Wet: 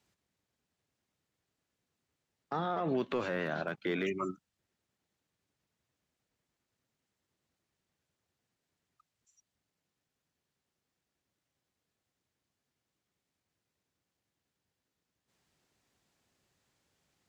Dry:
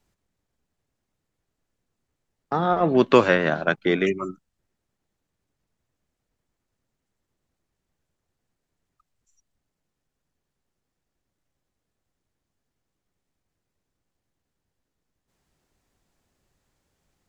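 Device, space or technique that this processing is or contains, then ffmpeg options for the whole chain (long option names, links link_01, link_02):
broadcast voice chain: -af "highpass=83,deesser=0.95,acompressor=threshold=-20dB:ratio=6,equalizer=frequency=3500:width_type=o:width=2.4:gain=5,alimiter=limit=-19.5dB:level=0:latency=1:release=48,volume=-4.5dB"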